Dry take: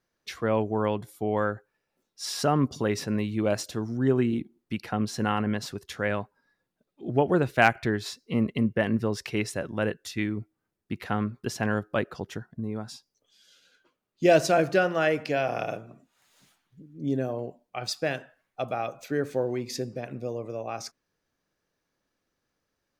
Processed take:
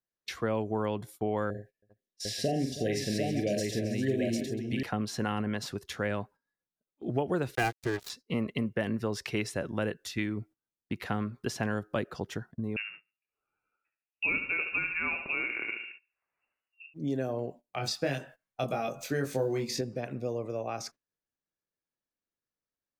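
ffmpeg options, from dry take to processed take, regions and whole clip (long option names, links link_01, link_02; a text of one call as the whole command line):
ffmpeg -i in.wav -filter_complex "[0:a]asettb=1/sr,asplit=3[link_01][link_02][link_03];[link_01]atrim=end=1.504[link_04];[link_02]atrim=start=1.5:end=4.83,asetpts=PTS-STARTPTS,afade=type=in:duration=0.004:curve=qsin,afade=type=out:start_time=3.326:duration=0.004:curve=qsin,asuperstop=centerf=1100:order=20:qfactor=1.2,aecho=1:1:44|83|321|393|749|881:0.473|0.224|0.126|0.158|0.631|0.15,atrim=end_sample=146853[link_05];[link_03]atrim=start=4.826[link_06];[link_04][link_05]acrossfade=duration=0.004:curve1=hsin:curve2=qsin[link_07];[link_07][link_06]acrossfade=duration=0.004:curve1=qsin:curve2=hsin,asettb=1/sr,asplit=3[link_08][link_09][link_10];[link_08]atrim=end=7.554[link_11];[link_09]atrim=start=7.55:end=8.1,asetpts=PTS-STARTPTS,afade=type=in:duration=0.004:curve=qsin,afade=type=out:start_time=0.546:duration=0.004:curve=qsin,aecho=1:1:2.5:0.97,atrim=end_sample=24255,aeval=exprs='sgn(val(0))*max(abs(val(0))-0.0299,0)':channel_layout=same[link_12];[link_10]atrim=start=8.096[link_13];[link_11][link_12]acrossfade=duration=0.004:curve1=hsin:curve2=qsin[link_14];[link_14][link_13]acrossfade=duration=0.004:curve1=qsin:curve2=hsin,asettb=1/sr,asplit=3[link_15][link_16][link_17];[link_15]atrim=end=12.764[link_18];[link_16]atrim=start=12.76:end=16.94,asetpts=PTS-STARTPTS,afade=type=in:duration=0.004:curve=qsin,afade=type=out:start_time=4.176:duration=0.004:curve=qsin,lowpass=frequency=2500:width_type=q:width=0.5098,lowpass=frequency=2500:width_type=q:width=0.6013,lowpass=frequency=2500:width_type=q:width=0.9,lowpass=frequency=2500:width_type=q:width=2.563,afreqshift=-2900,aecho=1:1:71|142|213|284:0.355|0.128|0.046|0.0166,atrim=end_sample=184338[link_19];[link_17]atrim=start=16.936[link_20];[link_18][link_19]acrossfade=duration=0.004:curve1=hsin:curve2=qsin[link_21];[link_21][link_20]acrossfade=duration=0.004:curve1=qsin:curve2=hsin,asettb=1/sr,asplit=3[link_22][link_23][link_24];[link_22]atrim=end=17.624[link_25];[link_23]atrim=start=17.62:end=19.81,asetpts=PTS-STARTPTS,afade=type=in:duration=0.004:curve=qsin,afade=type=out:start_time=2.186:duration=0.004:curve=qsin,bass=frequency=250:gain=3,treble=frequency=4000:gain=6,asplit=2[link_26][link_27];[link_27]adelay=22,volume=-3dB[link_28];[link_26][link_28]amix=inputs=2:normalize=0,atrim=end_sample=96579[link_29];[link_24]atrim=start=19.806[link_30];[link_25][link_29]acrossfade=duration=0.004:curve1=hsin:curve2=qsin[link_31];[link_31][link_30]acrossfade=duration=0.004:curve1=qsin:curve2=hsin,agate=range=-18dB:threshold=-47dB:ratio=16:detection=peak,acrossover=split=480|3900[link_32][link_33][link_34];[link_32]acompressor=threshold=-30dB:ratio=4[link_35];[link_33]acompressor=threshold=-33dB:ratio=4[link_36];[link_34]acompressor=threshold=-40dB:ratio=4[link_37];[link_35][link_36][link_37]amix=inputs=3:normalize=0" out.wav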